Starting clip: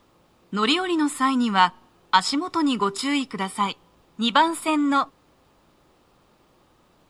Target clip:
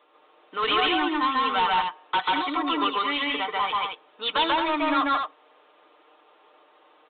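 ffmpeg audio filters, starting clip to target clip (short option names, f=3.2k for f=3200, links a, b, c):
-af "highpass=f=410:w=0.5412,highpass=f=410:w=1.3066,aecho=1:1:6.6:0.72,aresample=8000,asoftclip=type=tanh:threshold=-20dB,aresample=44100,aecho=1:1:139.9|221.6:1|0.562"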